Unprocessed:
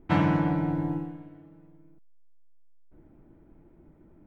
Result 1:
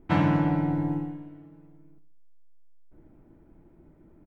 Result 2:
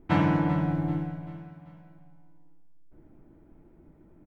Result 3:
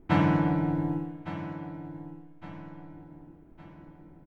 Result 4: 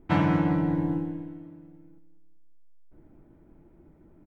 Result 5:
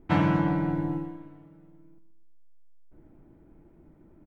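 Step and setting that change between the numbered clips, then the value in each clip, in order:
feedback echo, time: 68, 389, 1161, 194, 124 ms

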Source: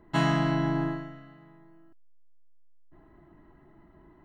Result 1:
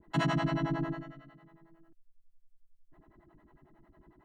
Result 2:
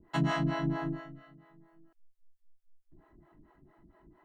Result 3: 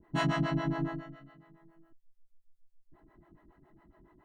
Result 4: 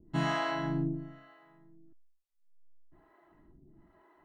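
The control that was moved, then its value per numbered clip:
harmonic tremolo, rate: 11, 4.4, 7.2, 1.1 Hz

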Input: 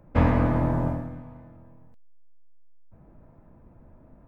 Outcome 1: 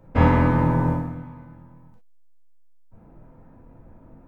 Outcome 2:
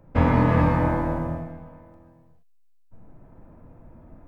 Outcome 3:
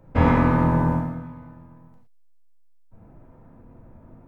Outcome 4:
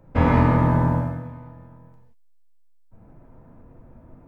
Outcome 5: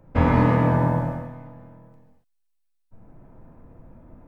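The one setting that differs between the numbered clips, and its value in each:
non-linear reverb, gate: 80, 500, 140, 210, 310 ms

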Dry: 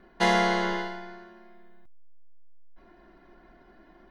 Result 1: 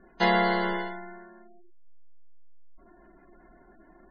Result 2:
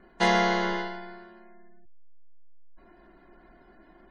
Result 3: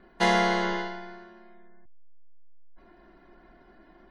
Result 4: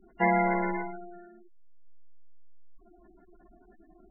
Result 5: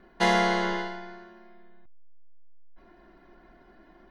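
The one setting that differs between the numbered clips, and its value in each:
spectral gate, under each frame's peak: -20, -35, -45, -10, -60 dB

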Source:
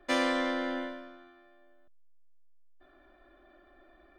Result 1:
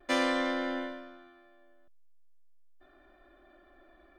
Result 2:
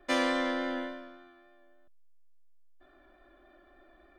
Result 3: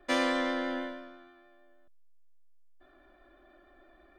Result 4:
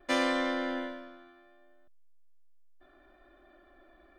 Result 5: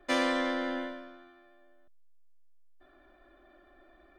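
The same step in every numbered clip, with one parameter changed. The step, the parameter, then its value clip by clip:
vibrato, rate: 0.42, 3.5, 6.3, 0.7, 14 Hz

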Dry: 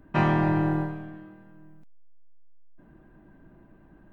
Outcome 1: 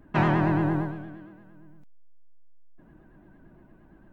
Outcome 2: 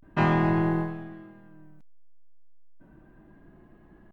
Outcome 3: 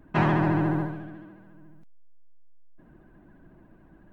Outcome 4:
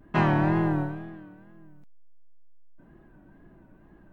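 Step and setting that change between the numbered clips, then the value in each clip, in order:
vibrato, rate: 8.7, 0.32, 14, 2.1 Hz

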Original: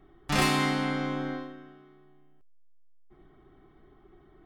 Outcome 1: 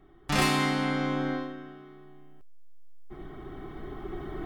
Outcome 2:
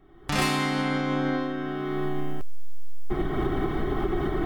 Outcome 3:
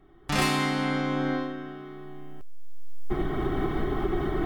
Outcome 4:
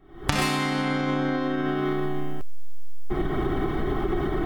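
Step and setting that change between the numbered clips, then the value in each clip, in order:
recorder AGC, rising by: 5.6, 35, 14, 87 dB/s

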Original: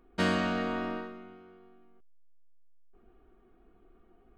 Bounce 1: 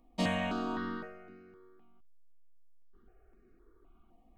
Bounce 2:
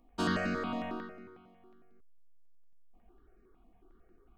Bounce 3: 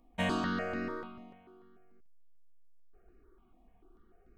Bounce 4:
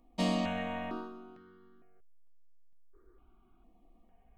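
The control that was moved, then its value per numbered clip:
step phaser, rate: 3.9, 11, 6.8, 2.2 Hz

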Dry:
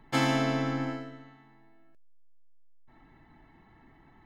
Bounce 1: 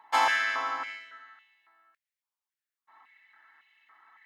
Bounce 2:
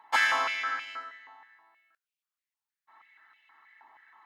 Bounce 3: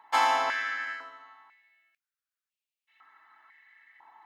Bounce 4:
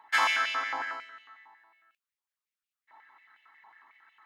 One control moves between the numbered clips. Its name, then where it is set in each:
stepped high-pass, rate: 3.6, 6.3, 2, 11 Hz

